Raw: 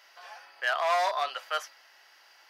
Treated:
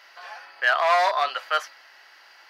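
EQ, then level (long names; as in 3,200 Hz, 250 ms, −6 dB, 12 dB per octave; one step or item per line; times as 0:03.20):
low-shelf EQ 460 Hz +9 dB
parametric band 1,700 Hz +7.5 dB 2.1 octaves
parametric band 4,300 Hz +5.5 dB 0.23 octaves
0.0 dB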